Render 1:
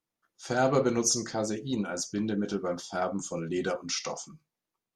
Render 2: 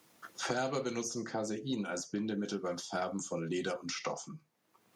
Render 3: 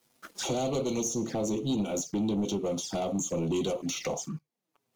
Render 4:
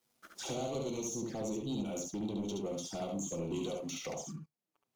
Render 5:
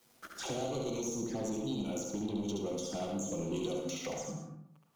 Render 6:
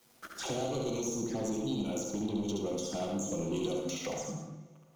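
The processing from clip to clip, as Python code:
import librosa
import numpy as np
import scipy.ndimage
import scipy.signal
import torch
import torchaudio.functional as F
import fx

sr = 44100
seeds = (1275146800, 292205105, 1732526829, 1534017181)

y1 = scipy.signal.sosfilt(scipy.signal.butter(2, 120.0, 'highpass', fs=sr, output='sos'), x)
y1 = fx.band_squash(y1, sr, depth_pct=100)
y1 = F.gain(torch.from_numpy(y1), -6.0).numpy()
y2 = fx.peak_eq(y1, sr, hz=1500.0, db=-6.5, octaves=1.5)
y2 = fx.leveller(y2, sr, passes=3)
y2 = fx.env_flanger(y2, sr, rest_ms=8.4, full_db=-28.5)
y3 = y2 + 10.0 ** (-3.5 / 20.0) * np.pad(y2, (int(71 * sr / 1000.0), 0))[:len(y2)]
y3 = F.gain(torch.from_numpy(y3), -9.0).numpy()
y4 = fx.rev_plate(y3, sr, seeds[0], rt60_s=0.64, hf_ratio=0.45, predelay_ms=95, drr_db=5.5)
y4 = fx.band_squash(y4, sr, depth_pct=40)
y5 = fx.rev_plate(y4, sr, seeds[1], rt60_s=2.6, hf_ratio=0.7, predelay_ms=0, drr_db=17.0)
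y5 = F.gain(torch.from_numpy(y5), 2.0).numpy()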